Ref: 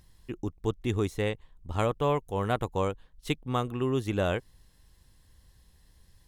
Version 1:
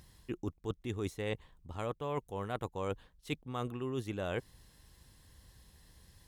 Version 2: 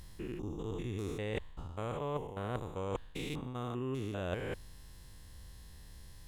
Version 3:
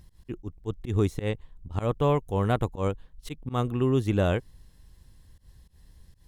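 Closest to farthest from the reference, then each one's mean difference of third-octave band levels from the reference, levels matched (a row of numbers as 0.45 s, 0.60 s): 1, 3, 2; 2.5 dB, 4.0 dB, 6.5 dB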